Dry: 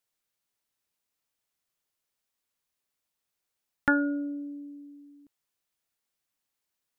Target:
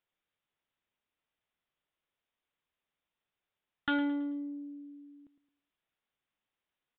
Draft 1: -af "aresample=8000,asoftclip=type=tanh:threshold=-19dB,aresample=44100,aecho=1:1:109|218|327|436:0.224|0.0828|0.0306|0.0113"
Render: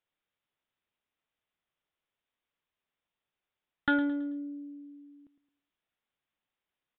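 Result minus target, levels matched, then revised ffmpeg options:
soft clipping: distortion −6 dB
-af "aresample=8000,asoftclip=type=tanh:threshold=-26dB,aresample=44100,aecho=1:1:109|218|327|436:0.224|0.0828|0.0306|0.0113"

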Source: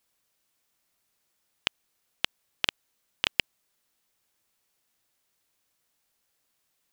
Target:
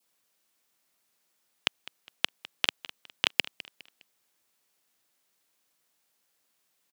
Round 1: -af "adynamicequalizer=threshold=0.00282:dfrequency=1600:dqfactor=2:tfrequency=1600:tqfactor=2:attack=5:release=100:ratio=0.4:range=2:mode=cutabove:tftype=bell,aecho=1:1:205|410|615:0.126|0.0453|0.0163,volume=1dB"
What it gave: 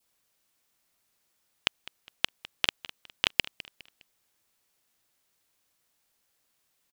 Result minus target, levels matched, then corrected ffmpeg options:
125 Hz band +5.0 dB
-af "adynamicequalizer=threshold=0.00282:dfrequency=1600:dqfactor=2:tfrequency=1600:tqfactor=2:attack=5:release=100:ratio=0.4:range=2:mode=cutabove:tftype=bell,highpass=150,aecho=1:1:205|410|615:0.126|0.0453|0.0163,volume=1dB"

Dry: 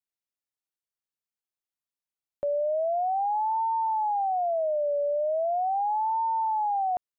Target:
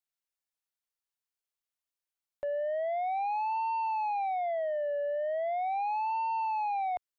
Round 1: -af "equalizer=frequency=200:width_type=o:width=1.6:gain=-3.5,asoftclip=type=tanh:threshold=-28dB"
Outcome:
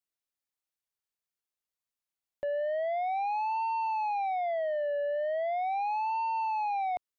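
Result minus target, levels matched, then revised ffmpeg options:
250 Hz band +4.5 dB
-af "equalizer=frequency=200:width_type=o:width=1.6:gain=-13.5,asoftclip=type=tanh:threshold=-28dB"

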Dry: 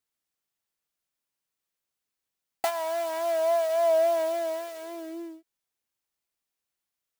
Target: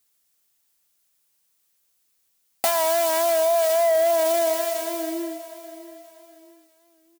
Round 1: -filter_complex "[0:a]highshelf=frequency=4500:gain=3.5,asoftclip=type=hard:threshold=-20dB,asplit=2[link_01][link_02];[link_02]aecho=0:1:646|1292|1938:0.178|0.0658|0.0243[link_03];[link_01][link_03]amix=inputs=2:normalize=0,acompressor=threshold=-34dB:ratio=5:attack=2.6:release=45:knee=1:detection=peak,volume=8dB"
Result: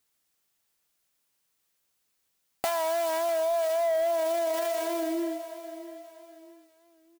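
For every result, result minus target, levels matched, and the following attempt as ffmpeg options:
downward compressor: peak gain reduction +7 dB; 8,000 Hz band −4.5 dB
-filter_complex "[0:a]highshelf=frequency=4500:gain=3.5,asoftclip=type=hard:threshold=-20dB,asplit=2[link_01][link_02];[link_02]aecho=0:1:646|1292|1938:0.178|0.0658|0.0243[link_03];[link_01][link_03]amix=inputs=2:normalize=0,acompressor=threshold=-25.5dB:ratio=5:attack=2.6:release=45:knee=1:detection=peak,volume=8dB"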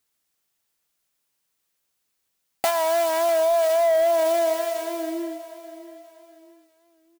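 8,000 Hz band −5.0 dB
-filter_complex "[0:a]highshelf=frequency=4500:gain=11.5,asoftclip=type=hard:threshold=-20dB,asplit=2[link_01][link_02];[link_02]aecho=0:1:646|1292|1938:0.178|0.0658|0.0243[link_03];[link_01][link_03]amix=inputs=2:normalize=0,acompressor=threshold=-25.5dB:ratio=5:attack=2.6:release=45:knee=1:detection=peak,volume=8dB"

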